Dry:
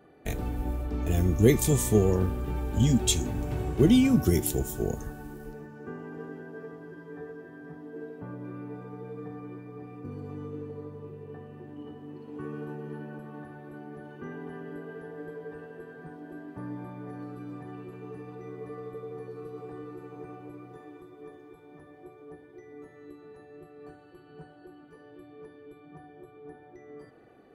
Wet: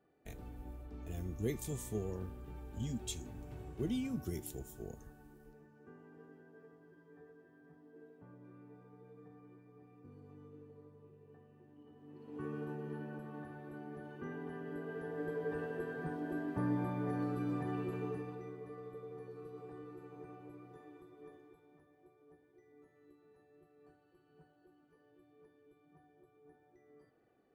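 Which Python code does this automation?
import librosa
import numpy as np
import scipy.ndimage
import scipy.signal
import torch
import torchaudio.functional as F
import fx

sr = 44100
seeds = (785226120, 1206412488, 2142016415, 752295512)

y = fx.gain(x, sr, db=fx.line((11.87, -17.0), (12.43, -4.5), (14.61, -4.5), (15.61, 3.5), (18.0, 3.5), (18.62, -8.5), (21.35, -8.5), (21.89, -16.5)))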